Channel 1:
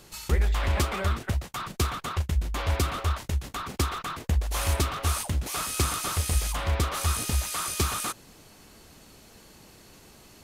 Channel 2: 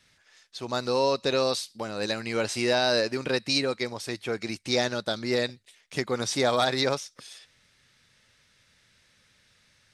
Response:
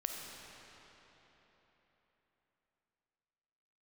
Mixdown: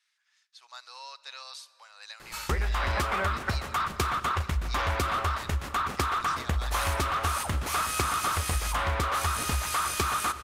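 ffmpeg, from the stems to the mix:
-filter_complex "[0:a]equalizer=f=1.3k:t=o:w=1.9:g=10,adelay=2200,volume=-2.5dB,asplit=2[a][b];[b]volume=-11dB[c];[1:a]highpass=f=990:w=0.5412,highpass=f=990:w=1.3066,volume=-13dB,asplit=2[d][e];[e]volume=-15.5dB[f];[2:a]atrim=start_sample=2205[g];[c][f]amix=inputs=2:normalize=0[h];[h][g]afir=irnorm=-1:irlink=0[i];[a][d][i]amix=inputs=3:normalize=0,acompressor=threshold=-24dB:ratio=6"

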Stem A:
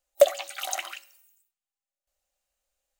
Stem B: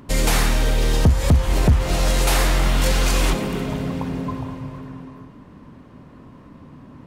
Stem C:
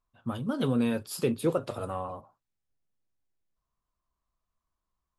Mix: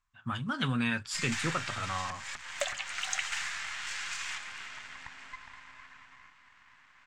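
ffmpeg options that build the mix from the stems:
-filter_complex "[0:a]adelay=2400,volume=-9dB[a];[1:a]highpass=810,acompressor=threshold=-45dB:ratio=1.5,aeval=exprs='max(val(0),0)':c=same,adelay=1050,volume=-6dB[b];[2:a]volume=-0.5dB[c];[a][b][c]amix=inputs=3:normalize=0,firequalizer=gain_entry='entry(130,0);entry(470,-15);entry(810,-1);entry(1700,12);entry(3900,4);entry(7600,7);entry(11000,-17)':delay=0.05:min_phase=1"

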